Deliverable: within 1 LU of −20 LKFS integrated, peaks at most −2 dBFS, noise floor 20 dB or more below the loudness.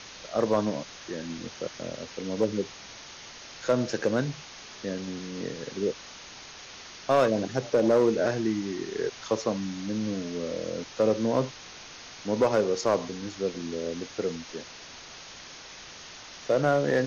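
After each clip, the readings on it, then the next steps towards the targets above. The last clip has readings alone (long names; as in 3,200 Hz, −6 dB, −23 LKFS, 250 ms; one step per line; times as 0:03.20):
share of clipped samples 0.4%; peaks flattened at −15.0 dBFS; background noise floor −46 dBFS; target noise floor −49 dBFS; integrated loudness −29.0 LKFS; sample peak −15.0 dBFS; target loudness −20.0 LKFS
→ clipped peaks rebuilt −15 dBFS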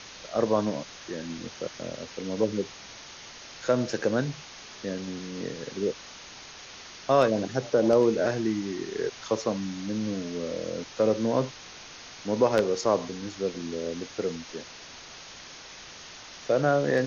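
share of clipped samples 0.0%; background noise floor −46 dBFS; target noise floor −49 dBFS
→ broadband denoise 6 dB, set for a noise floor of −46 dBFS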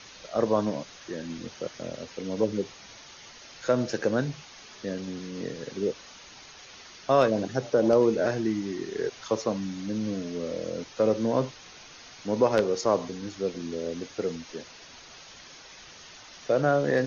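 background noise floor −49 dBFS; integrated loudness −28.5 LKFS; sample peak −6.0 dBFS; target loudness −20.0 LKFS
→ level +8.5 dB
brickwall limiter −2 dBFS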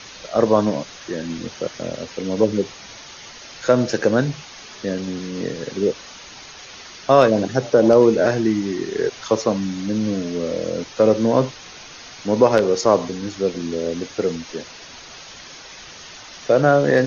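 integrated loudness −20.0 LKFS; sample peak −2.0 dBFS; background noise floor −40 dBFS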